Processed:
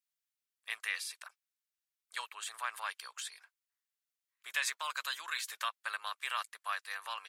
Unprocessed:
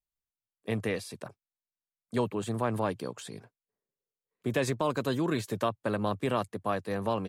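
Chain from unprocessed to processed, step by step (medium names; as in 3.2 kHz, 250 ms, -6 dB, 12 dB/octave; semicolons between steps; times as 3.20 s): high-pass 1.3 kHz 24 dB/octave; trim +3 dB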